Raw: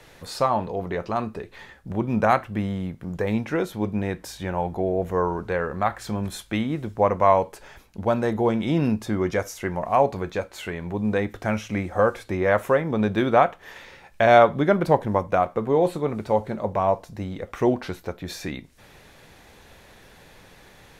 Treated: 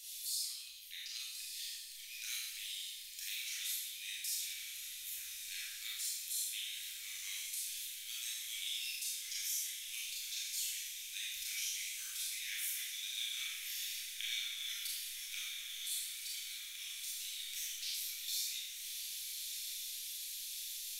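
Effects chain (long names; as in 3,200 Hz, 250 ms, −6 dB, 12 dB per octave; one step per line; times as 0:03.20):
inverse Chebyshev band-stop filter 120–1,000 Hz, stop band 60 dB
first-order pre-emphasis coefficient 0.97
downward compressor 6 to 1, threshold −50 dBFS, peak gain reduction 14.5 dB
on a send: feedback delay with all-pass diffusion 1,231 ms, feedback 66%, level −6.5 dB
on the sum: four-comb reverb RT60 0.9 s, combs from 27 ms, DRR −5.5 dB
level +7.5 dB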